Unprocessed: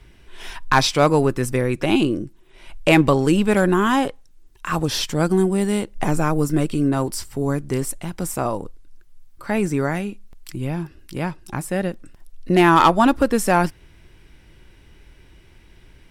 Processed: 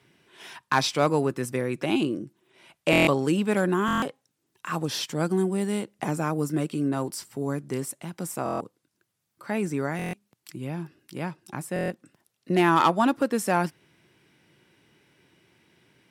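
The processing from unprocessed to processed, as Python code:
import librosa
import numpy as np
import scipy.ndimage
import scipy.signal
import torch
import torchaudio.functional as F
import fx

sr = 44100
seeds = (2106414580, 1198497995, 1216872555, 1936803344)

y = scipy.signal.sosfilt(scipy.signal.butter(4, 130.0, 'highpass', fs=sr, output='sos'), x)
y = fx.buffer_glitch(y, sr, at_s=(2.91, 3.86, 8.44, 9.97, 11.74), block=1024, repeats=6)
y = F.gain(torch.from_numpy(y), -6.5).numpy()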